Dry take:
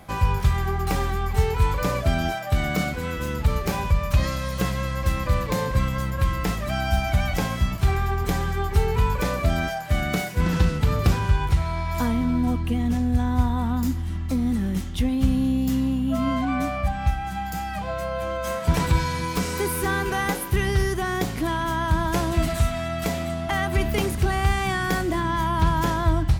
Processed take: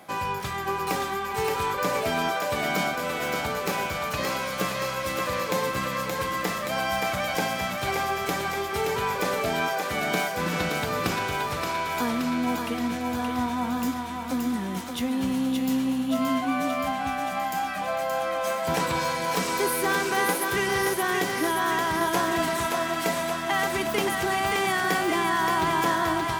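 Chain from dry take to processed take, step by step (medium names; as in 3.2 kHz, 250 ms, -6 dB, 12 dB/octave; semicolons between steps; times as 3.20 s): high-pass 260 Hz 12 dB/octave; thinning echo 574 ms, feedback 68%, high-pass 400 Hz, level -3.5 dB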